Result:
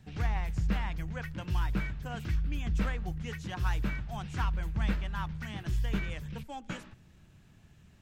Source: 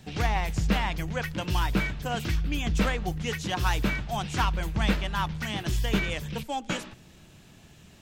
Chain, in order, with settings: FFT filter 100 Hz 0 dB, 340 Hz -8 dB, 660 Hz -9 dB, 1.6 kHz -5 dB, 3.4 kHz -11 dB; trim -2.5 dB

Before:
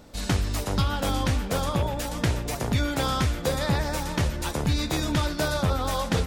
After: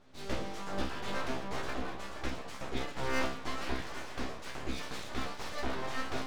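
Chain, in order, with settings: distance through air 110 m; chord resonator C3 fifth, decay 0.46 s; full-wave rectifier; trim +8 dB

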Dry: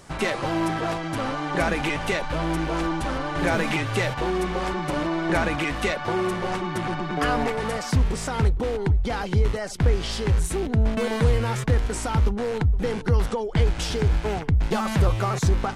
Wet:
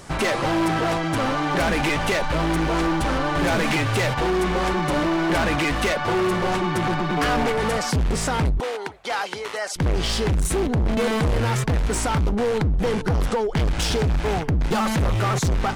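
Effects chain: 8.60–9.76 s: high-pass 700 Hz 12 dB/octave; hard clipper -24 dBFS, distortion -7 dB; trim +6 dB

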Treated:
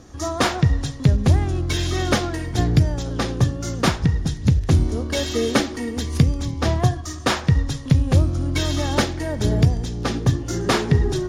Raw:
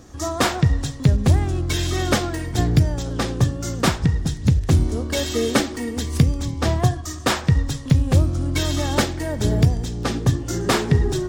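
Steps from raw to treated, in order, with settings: low-pass 11 kHz 12 dB/octave; band-stop 7.9 kHz, Q 5.3

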